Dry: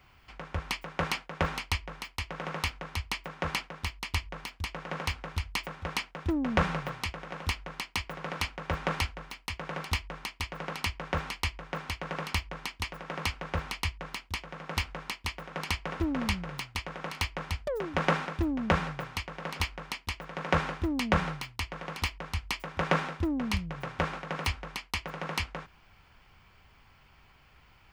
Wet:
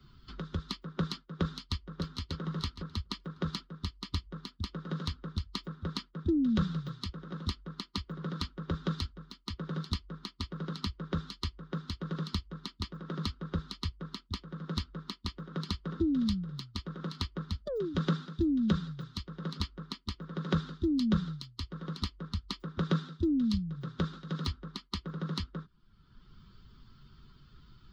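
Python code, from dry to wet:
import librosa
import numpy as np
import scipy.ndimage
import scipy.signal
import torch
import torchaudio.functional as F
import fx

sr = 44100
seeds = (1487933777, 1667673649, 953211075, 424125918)

y = fx.echo_throw(x, sr, start_s=1.4, length_s=0.83, ms=590, feedback_pct=15, wet_db=-6.5)
y = fx.bin_expand(y, sr, power=1.5)
y = fx.curve_eq(y, sr, hz=(100.0, 190.0, 340.0, 790.0, 1300.0, 2400.0, 3800.0, 10000.0), db=(0, 12, 9, -19, -1, -21, 5, -17))
y = fx.band_squash(y, sr, depth_pct=70)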